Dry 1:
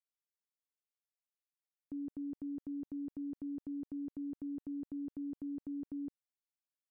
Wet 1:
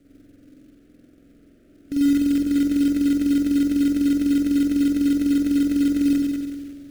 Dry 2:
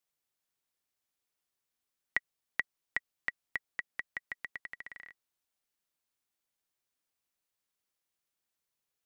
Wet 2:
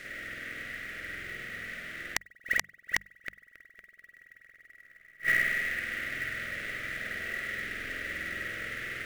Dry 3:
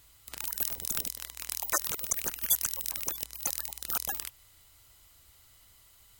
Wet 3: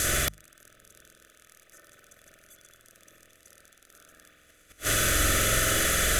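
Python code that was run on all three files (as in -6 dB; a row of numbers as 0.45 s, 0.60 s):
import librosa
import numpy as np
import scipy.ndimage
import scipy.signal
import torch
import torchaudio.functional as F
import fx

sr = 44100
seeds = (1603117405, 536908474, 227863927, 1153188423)

p1 = fx.bin_compress(x, sr, power=0.4)
p2 = fx.dereverb_blind(p1, sr, rt60_s=0.64)
p3 = scipy.signal.sosfilt(scipy.signal.butter(12, 12000.0, 'lowpass', fs=sr, output='sos'), p2)
p4 = p3 + fx.echo_wet_highpass(p3, sr, ms=217, feedback_pct=79, hz=2200.0, wet_db=-16.0, dry=0)
p5 = fx.rev_spring(p4, sr, rt60_s=1.7, pass_ms=(46,), chirp_ms=80, drr_db=-6.5)
p6 = fx.rider(p5, sr, range_db=5, speed_s=0.5)
p7 = p5 + F.gain(torch.from_numpy(p6), 3.0).numpy()
p8 = fx.gate_flip(p7, sr, shuts_db=-14.0, range_db=-37)
p9 = fx.quant_float(p8, sr, bits=2)
p10 = scipy.signal.sosfilt(scipy.signal.cheby1(2, 1.0, [610.0, 1400.0], 'bandstop', fs=sr, output='sos'), p9)
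p11 = 10.0 ** (-16.0 / 20.0) * (np.abs((p10 / 10.0 ** (-16.0 / 20.0) + 3.0) % 4.0 - 2.0) - 1.0)
p12 = fx.low_shelf(p11, sr, hz=160.0, db=6.5)
p13 = fx.hum_notches(p12, sr, base_hz=50, count=4)
y = librosa.util.normalize(p13) * 10.0 ** (-12 / 20.0)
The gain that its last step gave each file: +6.5 dB, +4.0 dB, +3.0 dB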